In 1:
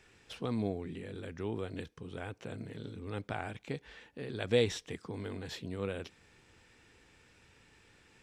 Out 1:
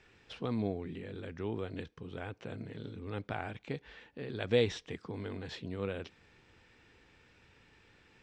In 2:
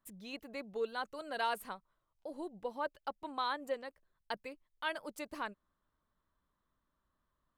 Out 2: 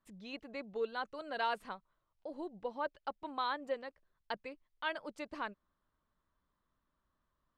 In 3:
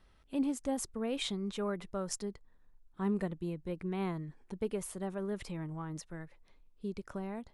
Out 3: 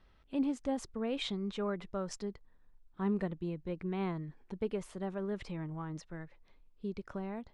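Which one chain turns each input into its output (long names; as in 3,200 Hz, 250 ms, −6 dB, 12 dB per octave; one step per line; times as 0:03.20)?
low-pass filter 4,800 Hz 12 dB per octave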